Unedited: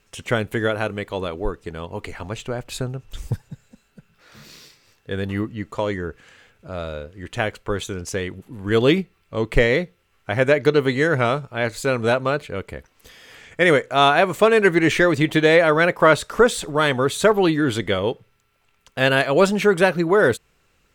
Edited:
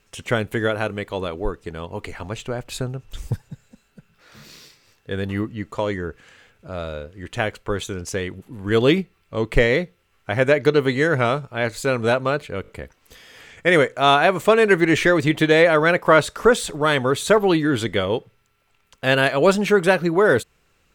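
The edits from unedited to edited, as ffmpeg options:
-filter_complex "[0:a]asplit=4[a][b][c][d];[a]atrim=end=12.642[e];[b]atrim=start=12.618:end=12.642[f];[c]atrim=start=12.618:end=12.642[g];[d]atrim=start=12.618[h];[e][f]acrossfade=d=0.004:c1=hsin:c2=hsin[i];[i][g]acrossfade=d=0.004:c1=hsin:c2=hsin[j];[j][h]acrossfade=d=0.004:c1=hsin:c2=hsin"

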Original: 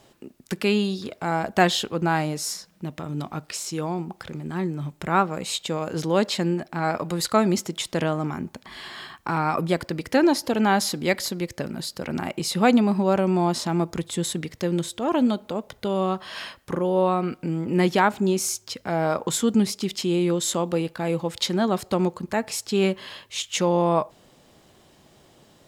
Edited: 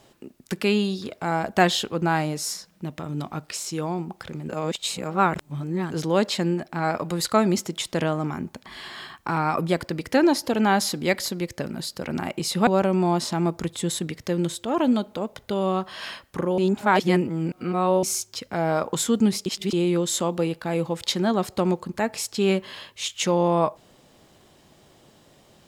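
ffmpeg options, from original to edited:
-filter_complex "[0:a]asplit=8[a][b][c][d][e][f][g][h];[a]atrim=end=4.492[i];[b]atrim=start=4.488:end=5.922,asetpts=PTS-STARTPTS,areverse[j];[c]atrim=start=5.918:end=12.672[k];[d]atrim=start=13.008:end=16.922[l];[e]atrim=start=16.918:end=18.372,asetpts=PTS-STARTPTS,areverse[m];[f]atrim=start=18.368:end=19.802[n];[g]atrim=start=19.798:end=20.072,asetpts=PTS-STARTPTS,areverse[o];[h]atrim=start=20.068[p];[i][j]acrossfade=d=0.004:c1=hsin:c2=hsin[q];[q][k]acrossfade=d=0.004:c1=hsin:c2=hsin[r];[r][l]acrossfade=d=0.004:c1=hsin:c2=hsin[s];[s][m]acrossfade=d=0.004:c1=hsin:c2=hsin[t];[t][n]acrossfade=d=0.004:c1=hsin:c2=hsin[u];[u][o]acrossfade=d=0.004:c1=hsin:c2=hsin[v];[v][p]acrossfade=d=0.004:c1=hsin:c2=hsin"

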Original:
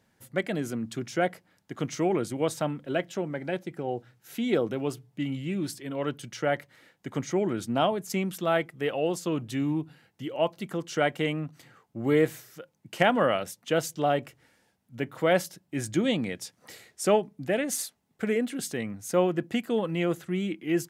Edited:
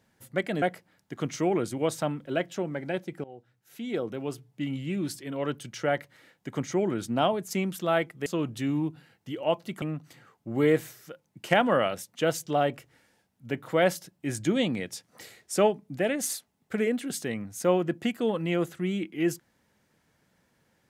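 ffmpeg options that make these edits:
-filter_complex "[0:a]asplit=5[a][b][c][d][e];[a]atrim=end=0.622[f];[b]atrim=start=1.208:end=3.83,asetpts=PTS-STARTPTS,afade=t=out:st=2.618:d=0.004:c=hsin:silence=0.133352[g];[c]atrim=start=3.83:end=8.852,asetpts=PTS-STARTPTS,afade=t=in:d=1.59:silence=0.133352[h];[d]atrim=start=9.188:end=10.752[i];[e]atrim=start=11.308[j];[g][h]concat=n=2:v=0:a=1[k];[f][k]acrossfade=d=0.004:c1=hsin:c2=hsin[l];[l][i]acrossfade=d=0.004:c1=hsin:c2=hsin[m];[m][j]acrossfade=d=0.004:c1=hsin:c2=hsin"

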